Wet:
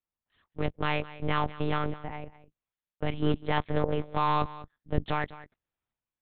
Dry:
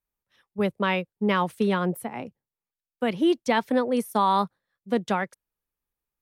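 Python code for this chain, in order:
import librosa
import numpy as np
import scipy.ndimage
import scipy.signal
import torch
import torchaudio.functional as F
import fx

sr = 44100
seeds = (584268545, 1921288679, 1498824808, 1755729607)

p1 = fx.low_shelf(x, sr, hz=73.0, db=-9.0)
p2 = fx.cheby_harmonics(p1, sr, harmonics=(6,), levels_db=(-21,), full_scale_db=-10.5)
p3 = fx.schmitt(p2, sr, flips_db=-23.0)
p4 = p2 + F.gain(torch.from_numpy(p3), -10.5).numpy()
p5 = fx.transient(p4, sr, attack_db=-2, sustain_db=6)
p6 = p5 + fx.echo_single(p5, sr, ms=204, db=-17.0, dry=0)
p7 = fx.lpc_monotone(p6, sr, seeds[0], pitch_hz=150.0, order=8)
y = F.gain(torch.from_numpy(p7), -4.5).numpy()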